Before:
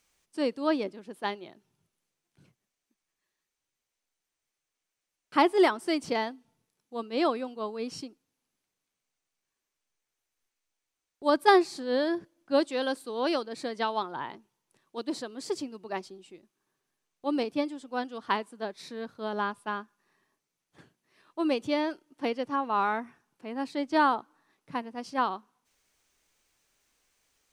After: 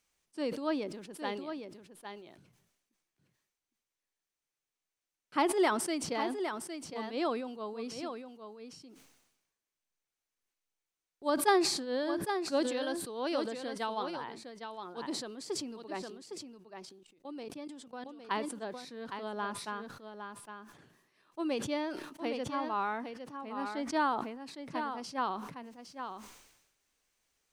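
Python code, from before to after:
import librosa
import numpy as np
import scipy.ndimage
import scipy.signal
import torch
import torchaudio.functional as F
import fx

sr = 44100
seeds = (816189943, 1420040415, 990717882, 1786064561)

y = fx.level_steps(x, sr, step_db=18, at=(16.04, 18.31))
y = y + 10.0 ** (-8.0 / 20.0) * np.pad(y, (int(810 * sr / 1000.0), 0))[:len(y)]
y = fx.sustainer(y, sr, db_per_s=56.0)
y = y * librosa.db_to_amplitude(-6.5)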